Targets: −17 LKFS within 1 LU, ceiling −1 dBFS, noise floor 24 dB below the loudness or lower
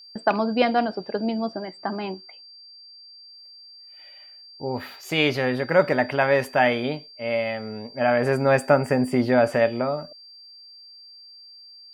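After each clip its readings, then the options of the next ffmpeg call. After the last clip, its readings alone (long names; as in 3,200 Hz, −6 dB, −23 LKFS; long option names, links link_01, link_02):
interfering tone 4,700 Hz; level of the tone −44 dBFS; integrated loudness −23.0 LKFS; sample peak −5.5 dBFS; target loudness −17.0 LKFS
→ -af "bandreject=frequency=4700:width=30"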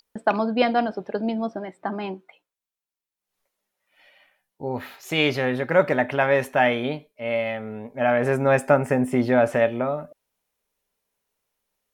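interfering tone none found; integrated loudness −23.0 LKFS; sample peak −5.0 dBFS; target loudness −17.0 LKFS
→ -af "volume=6dB,alimiter=limit=-1dB:level=0:latency=1"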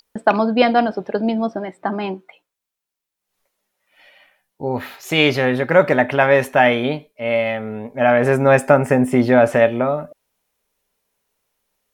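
integrated loudness −17.5 LKFS; sample peak −1.0 dBFS; background noise floor −83 dBFS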